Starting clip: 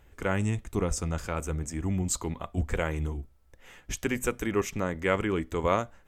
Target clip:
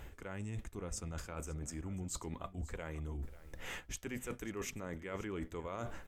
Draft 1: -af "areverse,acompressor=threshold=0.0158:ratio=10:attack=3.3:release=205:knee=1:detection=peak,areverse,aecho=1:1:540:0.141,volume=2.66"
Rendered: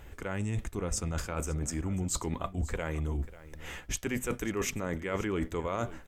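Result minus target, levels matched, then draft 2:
compression: peak gain reduction -9.5 dB
-af "areverse,acompressor=threshold=0.00473:ratio=10:attack=3.3:release=205:knee=1:detection=peak,areverse,aecho=1:1:540:0.141,volume=2.66"

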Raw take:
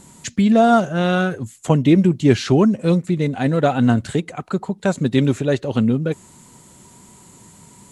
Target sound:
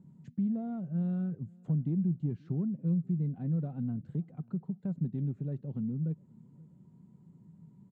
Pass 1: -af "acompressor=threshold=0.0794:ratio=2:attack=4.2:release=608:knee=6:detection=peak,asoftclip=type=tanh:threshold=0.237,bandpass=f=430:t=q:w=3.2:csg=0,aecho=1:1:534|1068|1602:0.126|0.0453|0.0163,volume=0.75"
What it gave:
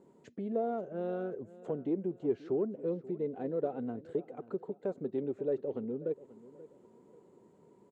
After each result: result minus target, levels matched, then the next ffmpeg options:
500 Hz band +17.5 dB; echo-to-direct +8 dB
-af "acompressor=threshold=0.0794:ratio=2:attack=4.2:release=608:knee=6:detection=peak,asoftclip=type=tanh:threshold=0.237,bandpass=f=160:t=q:w=3.2:csg=0,aecho=1:1:534|1068|1602:0.126|0.0453|0.0163,volume=0.75"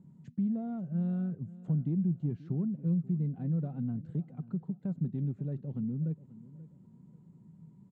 echo-to-direct +8 dB
-af "acompressor=threshold=0.0794:ratio=2:attack=4.2:release=608:knee=6:detection=peak,asoftclip=type=tanh:threshold=0.237,bandpass=f=160:t=q:w=3.2:csg=0,aecho=1:1:534|1068:0.0501|0.018,volume=0.75"

